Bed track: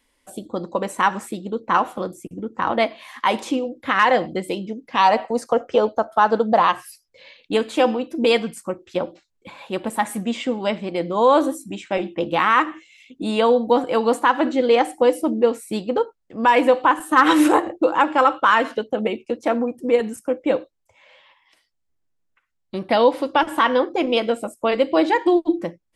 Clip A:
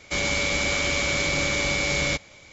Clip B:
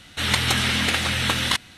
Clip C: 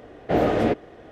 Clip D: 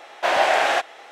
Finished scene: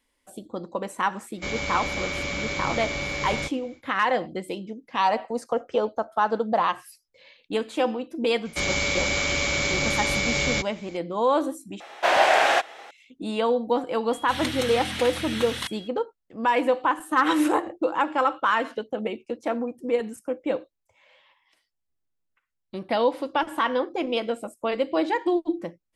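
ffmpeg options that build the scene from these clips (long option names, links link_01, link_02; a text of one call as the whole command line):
ffmpeg -i bed.wav -i cue0.wav -i cue1.wav -i cue2.wav -i cue3.wav -filter_complex "[1:a]asplit=2[link_01][link_02];[0:a]volume=-6.5dB[link_03];[link_01]highshelf=frequency=5100:gain=-9.5[link_04];[2:a]aeval=exprs='val(0)+0.02*sin(2*PI*3300*n/s)':channel_layout=same[link_05];[link_03]asplit=2[link_06][link_07];[link_06]atrim=end=11.804[link_08];[4:a]atrim=end=1.11[link_09];[link_07]atrim=start=12.906[link_10];[link_04]atrim=end=2.52,asetpts=PTS-STARTPTS,volume=-4dB,afade=type=in:duration=0.1,afade=type=out:start_time=2.42:duration=0.1,adelay=1310[link_11];[link_02]atrim=end=2.52,asetpts=PTS-STARTPTS,volume=-0.5dB,afade=type=in:duration=0.004:curve=hsin,afade=type=out:start_time=2.516:duration=0.004:curve=hsin,adelay=8450[link_12];[link_05]atrim=end=1.77,asetpts=PTS-STARTPTS,volume=-10dB,afade=type=in:duration=0.004:curve=hsin,afade=type=out:start_time=1.766:duration=0.004:curve=hsin,adelay=14110[link_13];[link_08][link_09]acrossfade=duration=0.004:curve1=hsin:curve2=hsin[link_14];[link_14][link_10]acrossfade=duration=0.004:curve1=hsin:curve2=hsin[link_15];[link_15][link_11][link_12][link_13]amix=inputs=4:normalize=0" out.wav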